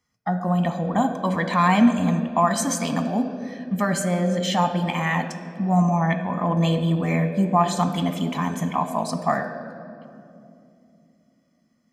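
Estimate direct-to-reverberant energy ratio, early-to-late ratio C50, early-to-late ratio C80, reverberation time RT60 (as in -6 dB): 7.0 dB, 9.0 dB, 10.0 dB, 2.7 s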